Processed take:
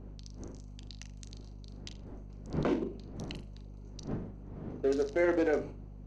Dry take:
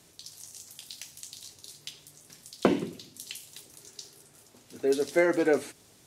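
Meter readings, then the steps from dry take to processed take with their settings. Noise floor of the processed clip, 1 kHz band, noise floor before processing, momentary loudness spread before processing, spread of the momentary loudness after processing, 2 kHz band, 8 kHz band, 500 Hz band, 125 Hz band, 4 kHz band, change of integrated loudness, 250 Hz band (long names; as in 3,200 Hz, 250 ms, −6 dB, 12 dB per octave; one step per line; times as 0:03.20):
−47 dBFS, −5.0 dB, −59 dBFS, 21 LU, 20 LU, −6.0 dB, −13.5 dB, −4.0 dB, +4.0 dB, −9.0 dB, −5.0 dB, −3.0 dB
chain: adaptive Wiener filter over 25 samples
wind on the microphone 93 Hz −32 dBFS
low-pass with resonance 6,300 Hz, resonance Q 2.9
three-way crossover with the lows and the highs turned down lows −21 dB, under 200 Hz, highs −13 dB, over 2,700 Hz
brickwall limiter −20 dBFS, peak gain reduction 10.5 dB
parametric band 4,200 Hz +2 dB
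on a send: flutter between parallel walls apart 6.9 metres, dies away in 0.26 s
on the sum: mains hum 50 Hz, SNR 11 dB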